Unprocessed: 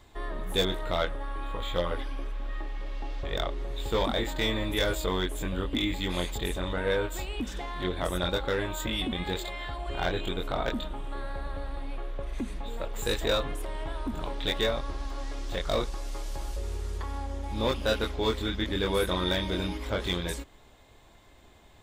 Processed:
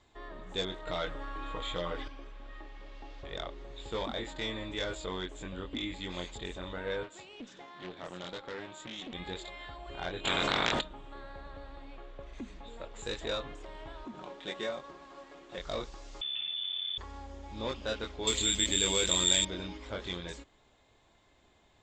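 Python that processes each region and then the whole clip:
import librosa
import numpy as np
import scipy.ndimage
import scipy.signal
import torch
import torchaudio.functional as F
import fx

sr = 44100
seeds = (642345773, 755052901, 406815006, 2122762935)

y = fx.chain(x, sr, fx.high_shelf(hz=8100.0, db=4.5),
    fx.comb(ms=6.5, depth=0.44),
    fx.env_flatten(amount_pct=70), at=(0.87, 2.08))
y = fx.chain(y, sr, fx.highpass(hz=110.0, slope=24),
    fx.tube_stage(drive_db=26.0, bias=0.7),
    fx.doppler_dist(depth_ms=0.21), at=(7.03, 9.14))
y = fx.spec_clip(y, sr, under_db=25, at=(10.24, 10.8), fade=0.02)
y = fx.env_flatten(y, sr, amount_pct=100, at=(10.24, 10.8), fade=0.02)
y = fx.chain(y, sr, fx.median_filter(points=9),
    fx.highpass(hz=160.0, slope=12),
    fx.comb(ms=5.5, depth=0.38), at=(14.05, 15.58))
y = fx.chain(y, sr, fx.air_absorb(metres=150.0),
    fx.freq_invert(carrier_hz=3500),
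    fx.env_flatten(amount_pct=100), at=(16.21, 16.98))
y = fx.chain(y, sr, fx.high_shelf_res(hz=2000.0, db=8.5, q=1.5),
    fx.resample_bad(factor=4, down='filtered', up='zero_stuff'),
    fx.env_flatten(amount_pct=50), at=(18.27, 19.45))
y = scipy.signal.sosfilt(scipy.signal.ellip(4, 1.0, 40, 7400.0, 'lowpass', fs=sr, output='sos'), y)
y = fx.low_shelf(y, sr, hz=69.0, db=-7.5)
y = F.gain(torch.from_numpy(y), -7.0).numpy()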